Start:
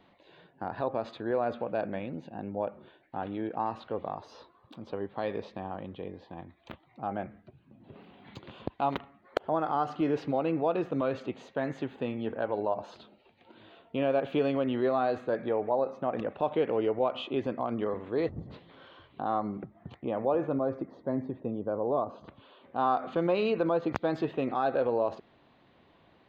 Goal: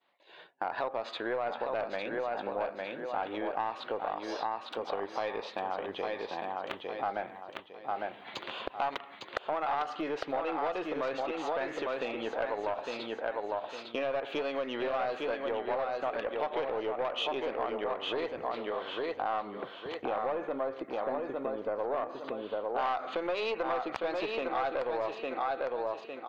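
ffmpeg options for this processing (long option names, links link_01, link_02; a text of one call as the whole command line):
ffmpeg -i in.wav -filter_complex "[0:a]bass=frequency=250:gain=-14,treble=frequency=4000:gain=-3,agate=range=-33dB:threshold=-52dB:ratio=3:detection=peak,aecho=1:1:855|1710|2565|3420:0.531|0.149|0.0416|0.0117,aeval=exprs='(tanh(12.6*val(0)+0.45)-tanh(0.45))/12.6':channel_layout=same,acompressor=threshold=-41dB:ratio=4,highshelf=frequency=4000:gain=11.5,asplit=2[link_01][link_02];[link_02]highpass=frequency=720:poles=1,volume=10dB,asoftclip=type=tanh:threshold=-23dB[link_03];[link_01][link_03]amix=inputs=2:normalize=0,lowpass=frequency=3200:poles=1,volume=-6dB,volume=7.5dB" out.wav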